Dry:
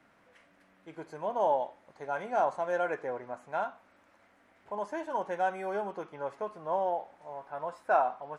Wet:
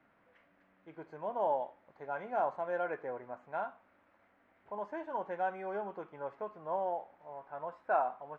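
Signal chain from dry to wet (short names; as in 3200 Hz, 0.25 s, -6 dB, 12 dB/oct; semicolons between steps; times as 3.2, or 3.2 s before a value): LPF 2600 Hz 12 dB/oct; gain -4.5 dB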